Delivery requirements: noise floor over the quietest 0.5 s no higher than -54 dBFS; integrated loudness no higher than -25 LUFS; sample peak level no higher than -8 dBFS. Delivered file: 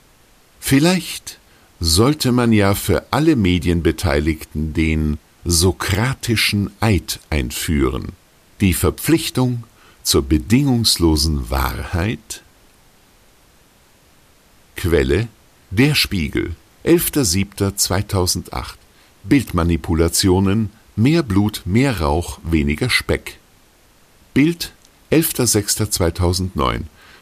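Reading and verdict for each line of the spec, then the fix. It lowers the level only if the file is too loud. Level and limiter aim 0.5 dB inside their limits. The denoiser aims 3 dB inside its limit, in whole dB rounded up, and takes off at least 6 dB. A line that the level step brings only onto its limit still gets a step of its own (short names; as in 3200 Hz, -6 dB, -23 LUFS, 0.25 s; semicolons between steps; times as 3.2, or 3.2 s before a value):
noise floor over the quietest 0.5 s -52 dBFS: fail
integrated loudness -17.5 LUFS: fail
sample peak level -3.0 dBFS: fail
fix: gain -8 dB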